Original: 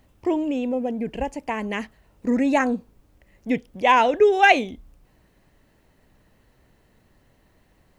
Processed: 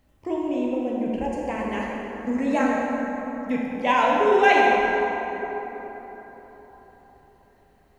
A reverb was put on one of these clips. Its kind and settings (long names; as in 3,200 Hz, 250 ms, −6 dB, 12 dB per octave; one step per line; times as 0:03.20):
dense smooth reverb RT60 4.3 s, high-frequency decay 0.45×, DRR −4.5 dB
level −6.5 dB